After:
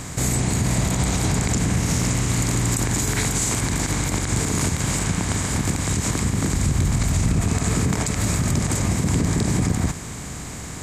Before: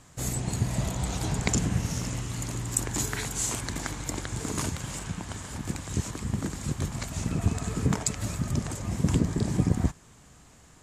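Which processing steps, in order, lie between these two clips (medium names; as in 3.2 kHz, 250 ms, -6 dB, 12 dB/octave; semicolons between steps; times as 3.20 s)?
spectral levelling over time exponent 0.6; 6.53–7.42 s: bass shelf 120 Hz +10.5 dB; peak limiter -17.5 dBFS, peak gain reduction 10.5 dB; trim +6 dB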